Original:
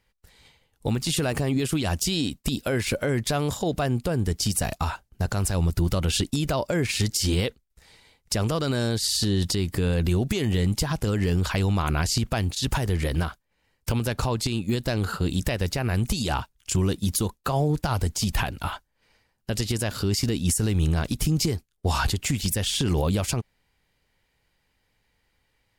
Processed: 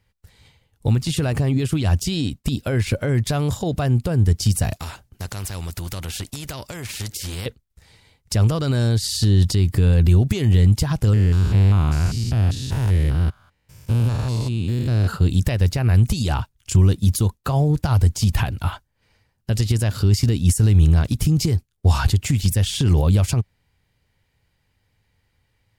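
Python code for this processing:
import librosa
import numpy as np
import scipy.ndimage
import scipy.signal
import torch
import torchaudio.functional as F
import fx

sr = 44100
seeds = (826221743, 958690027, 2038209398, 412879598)

y = fx.high_shelf(x, sr, hz=6100.0, db=-4.0, at=(0.98, 3.15))
y = fx.spectral_comp(y, sr, ratio=2.0, at=(4.75, 7.46))
y = fx.spec_steps(y, sr, hold_ms=200, at=(11.13, 15.08))
y = fx.peak_eq(y, sr, hz=98.0, db=11.5, octaves=1.4)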